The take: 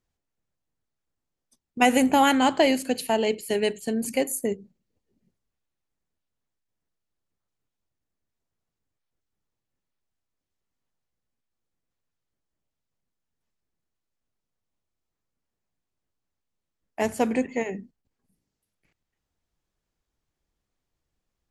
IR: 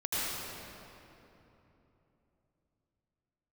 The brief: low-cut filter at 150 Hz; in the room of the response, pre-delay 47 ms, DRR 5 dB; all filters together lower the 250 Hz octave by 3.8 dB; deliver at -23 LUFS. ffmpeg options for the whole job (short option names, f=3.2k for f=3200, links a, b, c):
-filter_complex "[0:a]highpass=150,equalizer=f=250:t=o:g=-3.5,asplit=2[a][b];[1:a]atrim=start_sample=2205,adelay=47[c];[b][c]afir=irnorm=-1:irlink=0,volume=-13dB[d];[a][d]amix=inputs=2:normalize=0,volume=1dB"